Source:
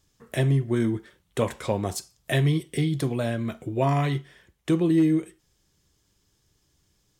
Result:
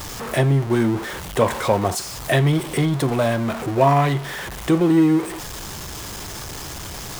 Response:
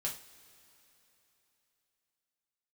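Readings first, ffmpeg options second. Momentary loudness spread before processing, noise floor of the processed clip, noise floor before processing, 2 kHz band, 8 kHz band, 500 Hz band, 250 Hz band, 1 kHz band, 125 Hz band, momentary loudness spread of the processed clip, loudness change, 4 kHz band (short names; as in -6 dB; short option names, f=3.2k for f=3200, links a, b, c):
11 LU, -33 dBFS, -70 dBFS, +8.5 dB, +10.5 dB, +7.5 dB, +5.0 dB, +11.0 dB, +4.5 dB, 15 LU, +5.5 dB, +8.0 dB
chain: -af "aeval=exprs='val(0)+0.5*0.0316*sgn(val(0))':c=same,equalizer=f=910:t=o:w=1.6:g=7.5,volume=2.5dB"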